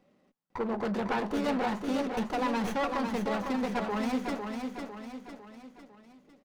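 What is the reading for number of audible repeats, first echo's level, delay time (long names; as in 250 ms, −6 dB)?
4, −5.5 dB, 502 ms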